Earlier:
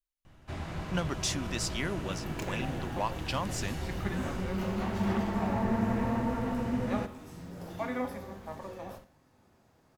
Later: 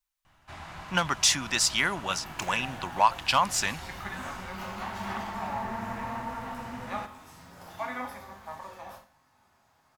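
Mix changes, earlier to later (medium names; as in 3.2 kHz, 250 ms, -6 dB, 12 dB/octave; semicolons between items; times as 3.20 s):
speech +10.5 dB; second sound: send +6.0 dB; master: add resonant low shelf 630 Hz -9.5 dB, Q 1.5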